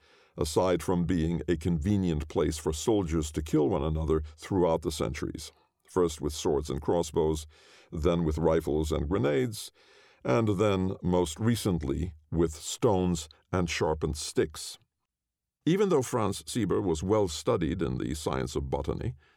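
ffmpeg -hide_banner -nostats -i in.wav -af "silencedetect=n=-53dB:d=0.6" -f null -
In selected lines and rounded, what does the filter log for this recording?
silence_start: 14.76
silence_end: 15.66 | silence_duration: 0.90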